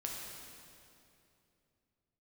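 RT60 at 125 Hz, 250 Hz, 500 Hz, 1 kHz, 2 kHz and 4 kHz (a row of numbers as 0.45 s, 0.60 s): 3.6 s, 3.2 s, 3.0 s, 2.5 s, 2.4 s, 2.2 s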